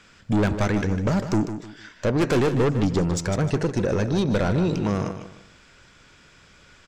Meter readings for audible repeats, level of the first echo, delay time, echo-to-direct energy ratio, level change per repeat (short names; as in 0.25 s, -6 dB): 3, -10.0 dB, 0.152 s, -9.5 dB, -10.0 dB